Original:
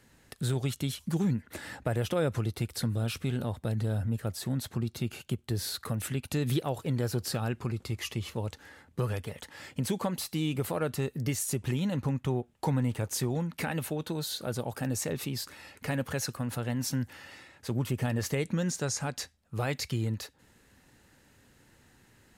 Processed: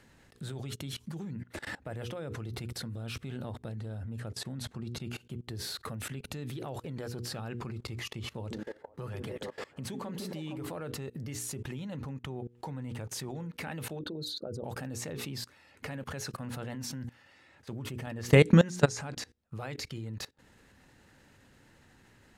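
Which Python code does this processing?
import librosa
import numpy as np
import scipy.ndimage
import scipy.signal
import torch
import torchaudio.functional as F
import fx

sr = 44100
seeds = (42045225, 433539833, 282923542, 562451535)

y = fx.steep_lowpass(x, sr, hz=12000.0, slope=36, at=(3.58, 5.07))
y = fx.echo_stepped(y, sr, ms=154, hz=270.0, octaves=0.7, feedback_pct=70, wet_db=-1, at=(8.32, 10.67))
y = fx.envelope_sharpen(y, sr, power=2.0, at=(13.99, 14.64))
y = fx.edit(y, sr, fx.clip_gain(start_s=18.07, length_s=1.08, db=7.5), tone=tone)
y = fx.high_shelf(y, sr, hz=7600.0, db=-10.5)
y = fx.hum_notches(y, sr, base_hz=60, count=8)
y = fx.level_steps(y, sr, step_db=22)
y = y * 10.0 ** (5.5 / 20.0)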